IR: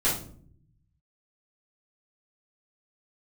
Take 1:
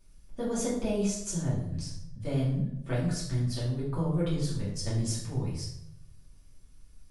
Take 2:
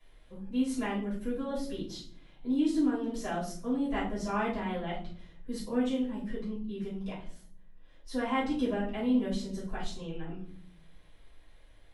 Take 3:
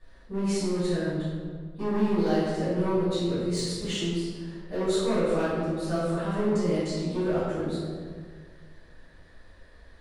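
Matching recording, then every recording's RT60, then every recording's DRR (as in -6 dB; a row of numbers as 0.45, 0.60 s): 2; 0.75, 0.55, 1.8 s; -9.0, -10.5, -14.0 dB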